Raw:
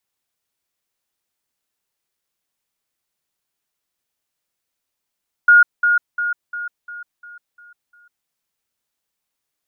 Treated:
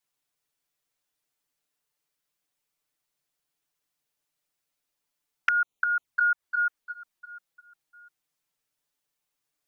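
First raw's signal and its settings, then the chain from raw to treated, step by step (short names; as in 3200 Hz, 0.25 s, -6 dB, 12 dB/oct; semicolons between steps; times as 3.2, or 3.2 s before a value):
level ladder 1430 Hz -6 dBFS, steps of -6 dB, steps 8, 0.15 s 0.20 s
envelope flanger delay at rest 6.8 ms, full sweep at -16.5 dBFS; dynamic EQ 1500 Hz, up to +6 dB, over -36 dBFS, Q 1.1; compressor 3:1, threshold -23 dBFS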